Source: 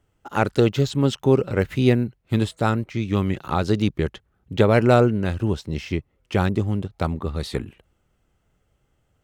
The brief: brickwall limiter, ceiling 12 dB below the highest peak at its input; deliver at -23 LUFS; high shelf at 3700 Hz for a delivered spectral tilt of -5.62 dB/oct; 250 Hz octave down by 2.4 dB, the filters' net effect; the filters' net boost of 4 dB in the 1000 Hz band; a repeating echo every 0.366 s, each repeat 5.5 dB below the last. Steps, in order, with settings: bell 250 Hz -3.5 dB; bell 1000 Hz +5.5 dB; high shelf 3700 Hz +5 dB; limiter -13.5 dBFS; feedback echo 0.366 s, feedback 53%, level -5.5 dB; gain +2.5 dB

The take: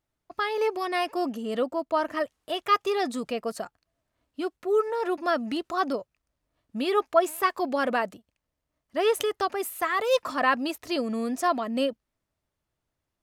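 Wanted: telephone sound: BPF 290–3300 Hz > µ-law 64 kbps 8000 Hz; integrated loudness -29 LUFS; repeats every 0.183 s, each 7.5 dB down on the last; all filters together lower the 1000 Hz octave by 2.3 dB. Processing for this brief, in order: BPF 290–3300 Hz; bell 1000 Hz -3 dB; feedback echo 0.183 s, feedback 42%, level -7.5 dB; gain -0.5 dB; µ-law 64 kbps 8000 Hz

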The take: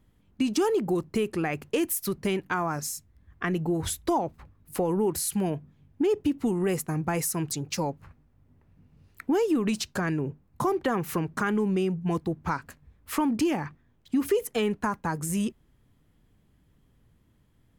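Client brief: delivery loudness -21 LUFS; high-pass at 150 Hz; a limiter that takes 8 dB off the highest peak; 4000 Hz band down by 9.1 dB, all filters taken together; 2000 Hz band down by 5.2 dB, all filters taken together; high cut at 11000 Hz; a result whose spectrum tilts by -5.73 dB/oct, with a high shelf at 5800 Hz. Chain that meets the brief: HPF 150 Hz; LPF 11000 Hz; bell 2000 Hz -4.5 dB; bell 4000 Hz -8 dB; high shelf 5800 Hz -8 dB; gain +11 dB; limiter -10.5 dBFS

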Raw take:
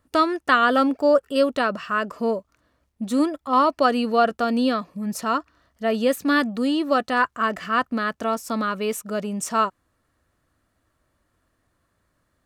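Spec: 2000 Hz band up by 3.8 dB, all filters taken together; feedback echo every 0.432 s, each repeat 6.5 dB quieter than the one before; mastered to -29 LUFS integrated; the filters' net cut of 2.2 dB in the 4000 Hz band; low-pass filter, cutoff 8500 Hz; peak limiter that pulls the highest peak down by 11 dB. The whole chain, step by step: LPF 8500 Hz; bell 2000 Hz +6.5 dB; bell 4000 Hz -6.5 dB; limiter -14 dBFS; feedback echo 0.432 s, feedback 47%, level -6.5 dB; gain -5 dB

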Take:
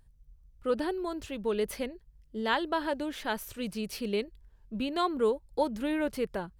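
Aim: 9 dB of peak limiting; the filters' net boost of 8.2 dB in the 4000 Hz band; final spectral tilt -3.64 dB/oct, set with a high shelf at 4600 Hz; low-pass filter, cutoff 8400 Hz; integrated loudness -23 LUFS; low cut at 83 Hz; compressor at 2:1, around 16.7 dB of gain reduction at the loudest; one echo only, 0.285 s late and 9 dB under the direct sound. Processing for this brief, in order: HPF 83 Hz; LPF 8400 Hz; bell 4000 Hz +8 dB; high shelf 4600 Hz +5.5 dB; compressor 2:1, threshold -54 dBFS; limiter -37 dBFS; echo 0.285 s -9 dB; gain +24.5 dB

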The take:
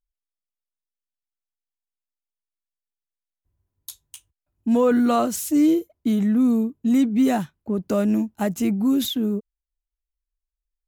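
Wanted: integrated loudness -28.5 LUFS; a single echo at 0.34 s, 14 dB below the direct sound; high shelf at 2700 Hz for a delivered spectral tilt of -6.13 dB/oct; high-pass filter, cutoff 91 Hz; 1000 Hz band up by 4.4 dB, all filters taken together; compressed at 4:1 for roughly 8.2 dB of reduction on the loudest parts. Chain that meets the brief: HPF 91 Hz; bell 1000 Hz +7.5 dB; high shelf 2700 Hz -7.5 dB; compressor 4:1, threshold -24 dBFS; echo 0.34 s -14 dB; gain -1 dB

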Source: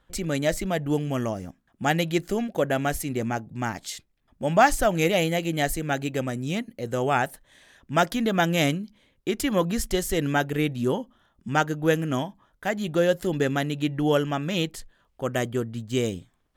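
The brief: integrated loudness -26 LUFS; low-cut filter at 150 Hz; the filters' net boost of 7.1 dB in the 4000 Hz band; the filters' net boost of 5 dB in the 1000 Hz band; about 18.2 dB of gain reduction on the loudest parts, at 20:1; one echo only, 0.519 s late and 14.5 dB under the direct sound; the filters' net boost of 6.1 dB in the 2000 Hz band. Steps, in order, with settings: HPF 150 Hz; bell 1000 Hz +6 dB; bell 2000 Hz +4 dB; bell 4000 Hz +7.5 dB; compressor 20:1, threshold -25 dBFS; echo 0.519 s -14.5 dB; gain +5 dB

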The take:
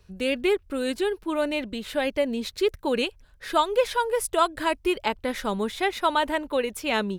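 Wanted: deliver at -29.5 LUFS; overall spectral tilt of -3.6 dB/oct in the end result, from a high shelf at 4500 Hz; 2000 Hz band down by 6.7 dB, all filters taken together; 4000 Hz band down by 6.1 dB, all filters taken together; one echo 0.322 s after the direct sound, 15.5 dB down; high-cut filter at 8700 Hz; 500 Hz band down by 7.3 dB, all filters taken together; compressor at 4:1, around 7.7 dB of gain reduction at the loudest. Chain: LPF 8700 Hz; bell 500 Hz -9 dB; bell 2000 Hz -7.5 dB; bell 4000 Hz -7.5 dB; high shelf 4500 Hz +6 dB; compressor 4:1, threshold -29 dBFS; echo 0.322 s -15.5 dB; gain +5 dB

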